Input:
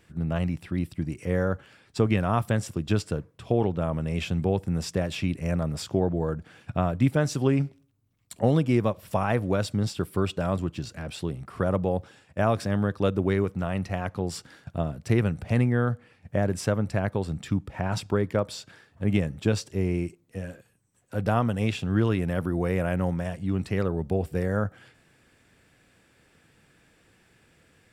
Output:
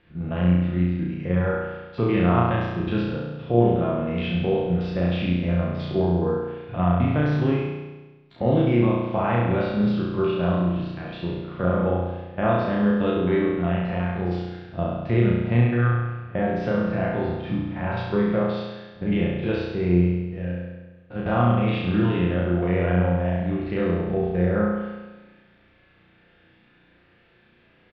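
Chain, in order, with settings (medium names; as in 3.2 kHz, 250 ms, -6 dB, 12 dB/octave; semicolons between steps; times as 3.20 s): spectrogram pixelated in time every 50 ms; steep low-pass 3.8 kHz 36 dB/octave; hum notches 50/100/150 Hz; comb 5.7 ms, depth 30%; flutter echo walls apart 5.8 m, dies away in 1.2 s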